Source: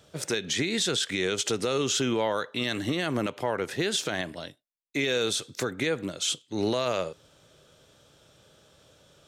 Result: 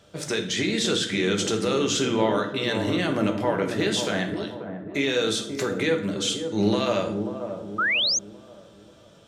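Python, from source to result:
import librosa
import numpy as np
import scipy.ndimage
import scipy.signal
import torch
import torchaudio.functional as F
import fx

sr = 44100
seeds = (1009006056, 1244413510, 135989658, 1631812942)

p1 = fx.high_shelf(x, sr, hz=8500.0, db=-7.5)
p2 = p1 + fx.echo_wet_lowpass(p1, sr, ms=537, feedback_pct=41, hz=920.0, wet_db=-7.0, dry=0)
p3 = fx.rev_fdn(p2, sr, rt60_s=0.69, lf_ratio=1.55, hf_ratio=0.75, size_ms=30.0, drr_db=3.5)
p4 = fx.spec_paint(p3, sr, seeds[0], shape='rise', start_s=7.78, length_s=0.41, low_hz=1200.0, high_hz=6800.0, level_db=-24.0)
y = F.gain(torch.from_numpy(p4), 1.5).numpy()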